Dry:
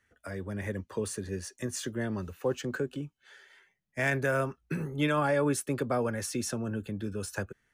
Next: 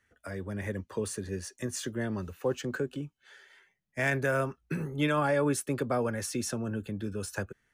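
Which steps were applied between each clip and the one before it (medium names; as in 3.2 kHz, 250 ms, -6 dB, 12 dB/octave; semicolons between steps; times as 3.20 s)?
no audible change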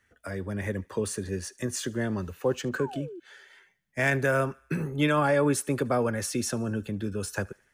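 thinning echo 74 ms, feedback 57%, high-pass 700 Hz, level -24 dB; painted sound fall, 2.78–3.20 s, 320–1200 Hz -44 dBFS; trim +3.5 dB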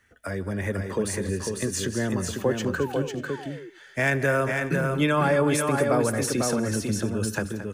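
in parallel at -2 dB: compression, threshold -34 dBFS, peak gain reduction 13.5 dB; on the sum: multi-tap echo 159/223/498/589 ms -20/-13/-4.5/-19.5 dB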